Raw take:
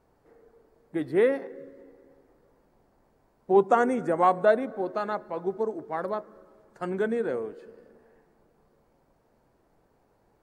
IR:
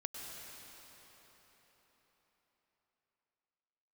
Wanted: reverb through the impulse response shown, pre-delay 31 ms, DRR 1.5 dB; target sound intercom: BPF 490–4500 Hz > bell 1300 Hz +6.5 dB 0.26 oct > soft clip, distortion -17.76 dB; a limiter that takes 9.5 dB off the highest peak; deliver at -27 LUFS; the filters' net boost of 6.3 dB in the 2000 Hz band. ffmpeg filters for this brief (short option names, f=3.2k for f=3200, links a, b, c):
-filter_complex "[0:a]equalizer=f=2k:t=o:g=7,alimiter=limit=-16dB:level=0:latency=1,asplit=2[a][b];[1:a]atrim=start_sample=2205,adelay=31[c];[b][c]afir=irnorm=-1:irlink=0,volume=-1dB[d];[a][d]amix=inputs=2:normalize=0,highpass=490,lowpass=4.5k,equalizer=f=1.3k:t=o:w=0.26:g=6.5,asoftclip=threshold=-19dB,volume=4dB"